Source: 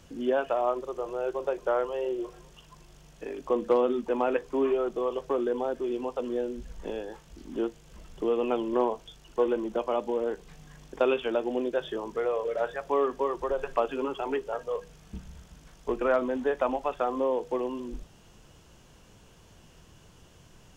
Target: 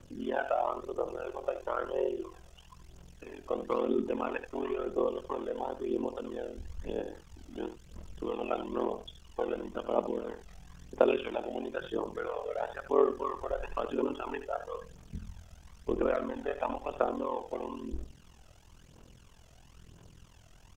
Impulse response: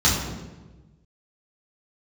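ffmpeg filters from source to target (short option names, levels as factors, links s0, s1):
-af "aphaser=in_gain=1:out_gain=1:delay=1.6:decay=0.58:speed=1:type=triangular,aecho=1:1:76:0.282,aeval=exprs='val(0)*sin(2*PI*21*n/s)':c=same,volume=0.708"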